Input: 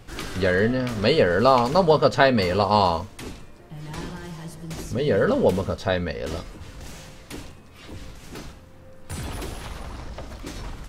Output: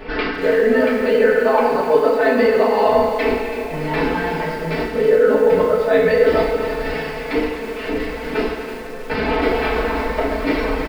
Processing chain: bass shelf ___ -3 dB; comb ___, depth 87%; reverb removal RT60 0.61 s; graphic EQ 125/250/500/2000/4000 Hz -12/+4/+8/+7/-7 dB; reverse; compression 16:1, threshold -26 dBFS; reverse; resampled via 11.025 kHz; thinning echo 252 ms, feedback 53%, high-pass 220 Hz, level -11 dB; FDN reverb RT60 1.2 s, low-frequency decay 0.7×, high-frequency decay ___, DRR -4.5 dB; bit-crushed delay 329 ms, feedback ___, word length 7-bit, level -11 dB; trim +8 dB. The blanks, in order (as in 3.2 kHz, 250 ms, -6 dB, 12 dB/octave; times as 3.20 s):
130 Hz, 4.6 ms, 0.85×, 35%